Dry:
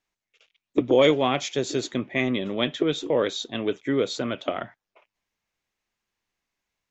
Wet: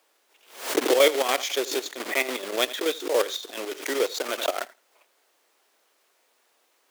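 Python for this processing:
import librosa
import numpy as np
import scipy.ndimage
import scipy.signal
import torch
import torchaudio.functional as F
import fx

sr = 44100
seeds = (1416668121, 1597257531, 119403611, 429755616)

p1 = fx.block_float(x, sr, bits=3)
p2 = fx.vibrato(p1, sr, rate_hz=0.5, depth_cents=44.0)
p3 = fx.chopper(p2, sr, hz=7.0, depth_pct=65, duty_pct=55)
p4 = fx.dmg_noise_colour(p3, sr, seeds[0], colour='pink', level_db=-66.0)
p5 = scipy.signal.sosfilt(scipy.signal.butter(4, 380.0, 'highpass', fs=sr, output='sos'), p4)
p6 = p5 + fx.echo_feedback(p5, sr, ms=82, feedback_pct=16, wet_db=-21.5, dry=0)
p7 = fx.pre_swell(p6, sr, db_per_s=120.0)
y = F.gain(torch.from_numpy(p7), 1.5).numpy()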